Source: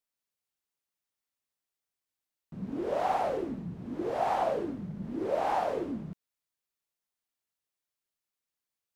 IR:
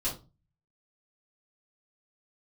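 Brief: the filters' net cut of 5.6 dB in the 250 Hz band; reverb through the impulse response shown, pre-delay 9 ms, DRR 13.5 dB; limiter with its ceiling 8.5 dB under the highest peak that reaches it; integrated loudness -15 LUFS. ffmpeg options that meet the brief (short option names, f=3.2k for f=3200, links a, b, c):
-filter_complex "[0:a]equalizer=f=250:t=o:g=-8,alimiter=level_in=2dB:limit=-24dB:level=0:latency=1,volume=-2dB,asplit=2[a][b];[1:a]atrim=start_sample=2205,adelay=9[c];[b][c]afir=irnorm=-1:irlink=0,volume=-18.5dB[d];[a][d]amix=inputs=2:normalize=0,volume=22dB"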